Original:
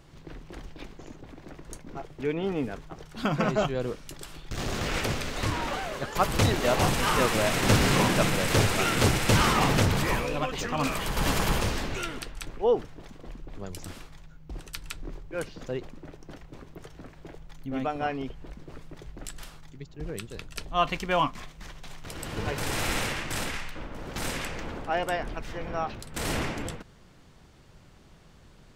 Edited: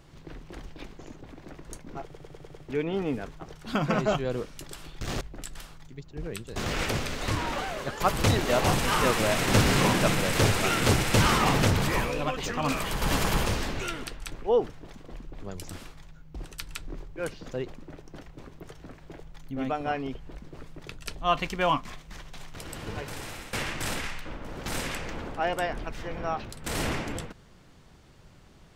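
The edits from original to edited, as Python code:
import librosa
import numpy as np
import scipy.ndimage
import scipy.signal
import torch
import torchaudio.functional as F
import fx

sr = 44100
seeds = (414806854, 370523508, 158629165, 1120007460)

y = fx.edit(x, sr, fx.stutter(start_s=2.04, slice_s=0.1, count=6),
    fx.move(start_s=19.04, length_s=1.35, to_s=4.71),
    fx.fade_out_to(start_s=21.95, length_s=1.08, floor_db=-18.5), tone=tone)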